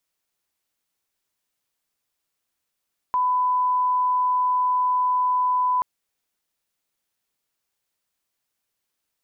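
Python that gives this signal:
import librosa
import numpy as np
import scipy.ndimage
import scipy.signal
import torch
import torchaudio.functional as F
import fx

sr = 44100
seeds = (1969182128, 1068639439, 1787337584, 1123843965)

y = fx.lineup_tone(sr, length_s=2.68, level_db=-18.0)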